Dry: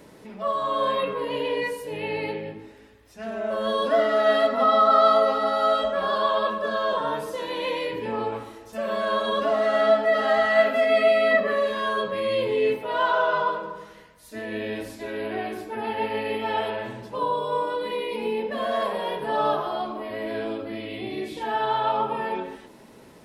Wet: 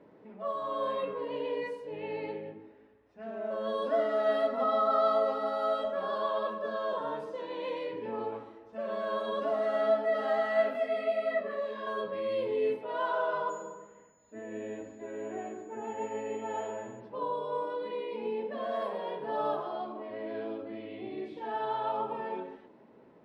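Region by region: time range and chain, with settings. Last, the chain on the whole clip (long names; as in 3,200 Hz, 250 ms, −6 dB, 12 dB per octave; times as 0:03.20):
0:10.73–0:11.87: upward compression, threshold −23 dBFS + micro pitch shift up and down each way 29 cents
0:13.49–0:16.99: high-frequency loss of the air 320 metres + steady tone 6,900 Hz −37 dBFS + single-tap delay 246 ms −17 dB
whole clip: high-pass filter 500 Hz 6 dB per octave; low-pass that shuts in the quiet parts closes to 2,300 Hz, open at −20.5 dBFS; tilt shelving filter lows +7.5 dB, about 890 Hz; level −7.5 dB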